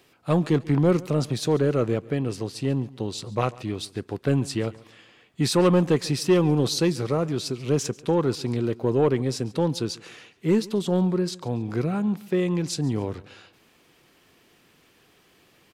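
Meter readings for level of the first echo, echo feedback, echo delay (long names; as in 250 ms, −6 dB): −21.5 dB, 38%, 140 ms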